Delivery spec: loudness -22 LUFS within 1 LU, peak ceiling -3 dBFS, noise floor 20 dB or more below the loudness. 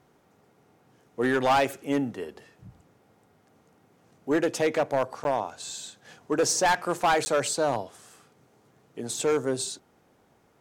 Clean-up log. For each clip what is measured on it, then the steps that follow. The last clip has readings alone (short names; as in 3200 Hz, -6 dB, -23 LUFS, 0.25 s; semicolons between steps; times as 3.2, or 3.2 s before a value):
clipped 1.2%; flat tops at -17.5 dBFS; dropouts 2; longest dropout 10 ms; loudness -26.5 LUFS; peak -17.5 dBFS; loudness target -22.0 LUFS
-> clip repair -17.5 dBFS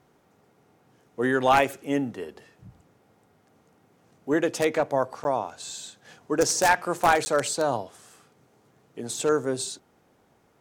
clipped 0.0%; dropouts 2; longest dropout 10 ms
-> interpolate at 5.24/7.25, 10 ms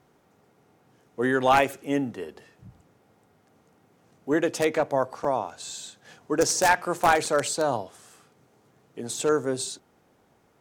dropouts 0; loudness -25.0 LUFS; peak -8.5 dBFS; loudness target -22.0 LUFS
-> gain +3 dB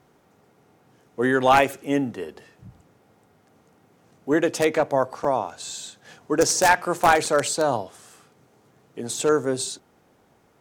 loudness -22.0 LUFS; peak -5.5 dBFS; noise floor -61 dBFS